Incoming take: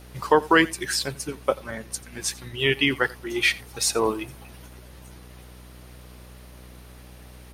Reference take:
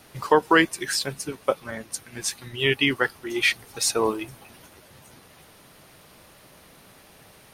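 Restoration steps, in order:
hum removal 61.6 Hz, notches 9
echo removal 87 ms −21.5 dB

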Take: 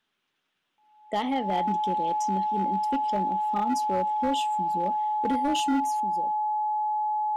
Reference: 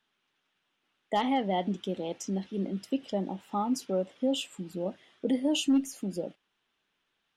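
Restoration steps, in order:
clipped peaks rebuilt −20 dBFS
notch filter 850 Hz, Q 30
level 0 dB, from 0:06.00 +7.5 dB

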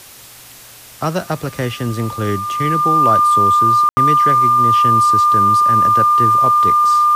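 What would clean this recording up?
notch filter 1,200 Hz, Q 30
ambience match 0:03.89–0:03.97
broadband denoise 22 dB, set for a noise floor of −39 dBFS

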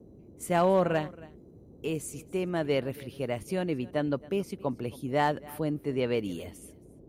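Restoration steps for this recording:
clipped peaks rebuilt −16 dBFS
noise reduction from a noise print 22 dB
echo removal 273 ms −21 dB

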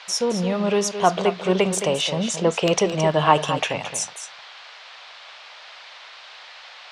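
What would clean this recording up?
noise reduction from a noise print 24 dB
echo removal 218 ms −10 dB

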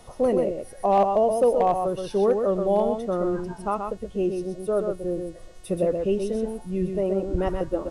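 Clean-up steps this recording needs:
clipped peaks rebuilt −12.5 dBFS
hum removal 364.7 Hz, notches 24
echo removal 127 ms −5.5 dB

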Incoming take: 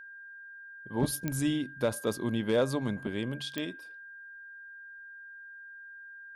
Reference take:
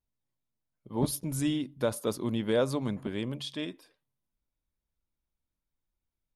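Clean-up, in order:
clipped peaks rebuilt −19 dBFS
click removal
notch filter 1,600 Hz, Q 30

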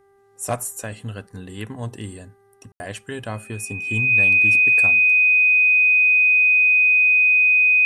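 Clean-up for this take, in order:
hum removal 396.1 Hz, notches 5
notch filter 2,500 Hz, Q 30
ambience match 0:02.72–0:02.80

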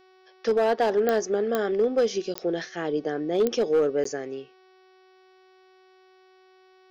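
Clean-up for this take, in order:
clipped peaks rebuilt −16 dBFS
click removal
hum removal 374.2 Hz, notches 15
repair the gap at 0:02.34/0:04.04, 14 ms

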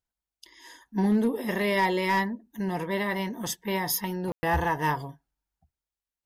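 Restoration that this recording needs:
clipped peaks rebuilt −17 dBFS
ambience match 0:04.32–0:04.43

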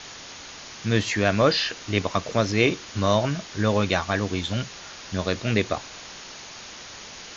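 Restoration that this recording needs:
noise reduction from a noise print 28 dB

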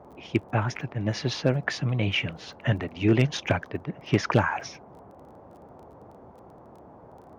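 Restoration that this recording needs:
clipped peaks rebuilt −10.5 dBFS
click removal
noise reduction from a noise print 21 dB

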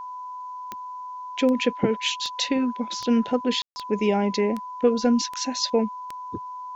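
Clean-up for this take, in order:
click removal
notch filter 1,000 Hz, Q 30
ambience match 0:03.62–0:03.76
downward expander −28 dBFS, range −21 dB

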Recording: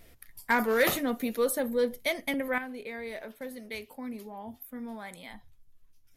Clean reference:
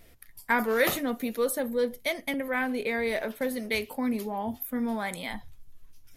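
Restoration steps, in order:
clipped peaks rebuilt −15.5 dBFS
level correction +10 dB, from 0:02.58

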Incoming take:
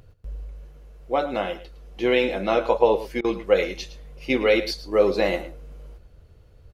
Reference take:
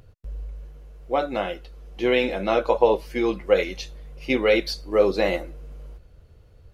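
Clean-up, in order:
repair the gap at 0:03.21, 33 ms
echo removal 110 ms −14.5 dB

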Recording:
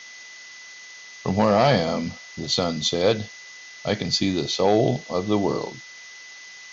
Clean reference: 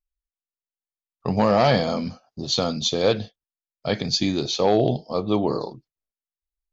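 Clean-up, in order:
notch filter 2,000 Hz, Q 30
noise reduction from a noise print 30 dB

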